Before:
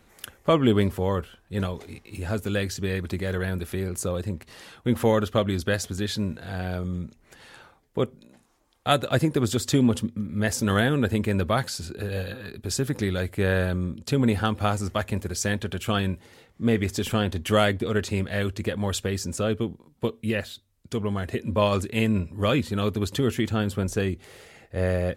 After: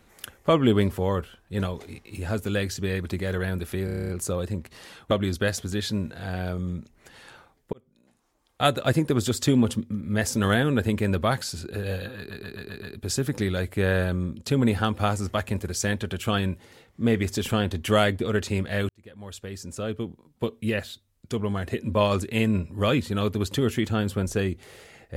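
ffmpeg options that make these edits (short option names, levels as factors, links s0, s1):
-filter_complex "[0:a]asplit=17[s0][s1][s2][s3][s4][s5][s6][s7][s8][s9][s10][s11][s12][s13][s14][s15][s16];[s0]atrim=end=3.882[s17];[s1]atrim=start=3.848:end=3.882[s18];[s2]atrim=start=3.848:end=3.882[s19];[s3]atrim=start=3.848:end=3.882[s20];[s4]atrim=start=3.848:end=3.882[s21];[s5]atrim=start=3.848:end=3.882[s22];[s6]atrim=start=3.848:end=3.882[s23];[s7]atrim=start=3.848:end=3.882[s24];[s8]atrim=start=3.848:end=4.872[s25];[s9]atrim=start=5.368:end=7.99,asetpts=PTS-STARTPTS,afade=t=out:st=2.618:d=0.004:c=hsin[s26];[s10]atrim=start=7.99:end=12.572,asetpts=PTS-STARTPTS,afade=t=in:d=0.93[s27];[s11]atrim=start=12.438:end=12.572[s28];[s12]atrim=start=12.438:end=12.572[s29];[s13]atrim=start=12.438:end=12.572[s30];[s14]atrim=start=12.438:end=12.572[s31];[s15]atrim=start=12.438:end=18.5,asetpts=PTS-STARTPTS,afade=t=out:st=6.058:d=0.004:c=hsin[s32];[s16]atrim=start=18.5,asetpts=PTS-STARTPTS,afade=t=in:d=1.78[s33];[s17][s18]acrossfade=d=0.004:c1=hsin:c2=hsin[s34];[s34][s19]acrossfade=d=0.004:c1=hsin:c2=hsin[s35];[s35][s20]acrossfade=d=0.004:c1=hsin:c2=hsin[s36];[s36][s21]acrossfade=d=0.004:c1=hsin:c2=hsin[s37];[s37][s22]acrossfade=d=0.004:c1=hsin:c2=hsin[s38];[s38][s23]acrossfade=d=0.004:c1=hsin:c2=hsin[s39];[s39][s24]acrossfade=d=0.004:c1=hsin:c2=hsin[s40];[s40][s25]acrossfade=d=0.004:c1=hsin:c2=hsin[s41];[s26][s27]concat=n=2:v=0:a=1[s42];[s41][s42]acrossfade=d=0.004:c1=hsin:c2=hsin[s43];[s43][s28]acrossfade=d=0.004:c1=hsin:c2=hsin[s44];[s44][s29]acrossfade=d=0.004:c1=hsin:c2=hsin[s45];[s45][s30]acrossfade=d=0.004:c1=hsin:c2=hsin[s46];[s46][s31]acrossfade=d=0.004:c1=hsin:c2=hsin[s47];[s32][s33]concat=n=2:v=0:a=1[s48];[s47][s48]acrossfade=d=0.004:c1=hsin:c2=hsin"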